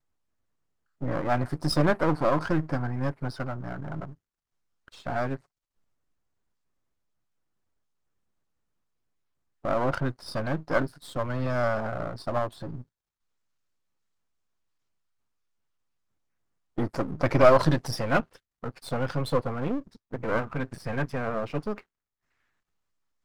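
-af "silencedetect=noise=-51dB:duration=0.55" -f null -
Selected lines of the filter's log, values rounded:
silence_start: 0.00
silence_end: 1.01 | silence_duration: 1.01
silence_start: 4.14
silence_end: 4.88 | silence_duration: 0.74
silence_start: 5.40
silence_end: 9.64 | silence_duration: 4.24
silence_start: 12.84
silence_end: 16.77 | silence_duration: 3.93
silence_start: 21.82
silence_end: 23.25 | silence_duration: 1.43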